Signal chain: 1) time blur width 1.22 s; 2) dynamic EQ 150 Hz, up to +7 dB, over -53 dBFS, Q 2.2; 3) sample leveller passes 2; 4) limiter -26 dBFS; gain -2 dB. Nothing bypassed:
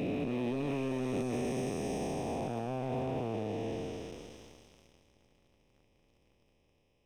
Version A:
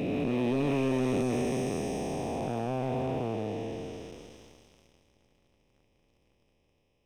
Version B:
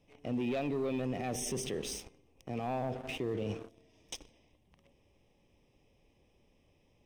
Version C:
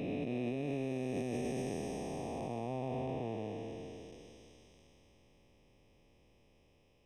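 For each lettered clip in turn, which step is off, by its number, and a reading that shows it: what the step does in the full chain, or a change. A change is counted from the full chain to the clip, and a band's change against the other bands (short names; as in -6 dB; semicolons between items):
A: 4, mean gain reduction 3.0 dB; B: 1, 8 kHz band +9.5 dB; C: 3, crest factor change +3.5 dB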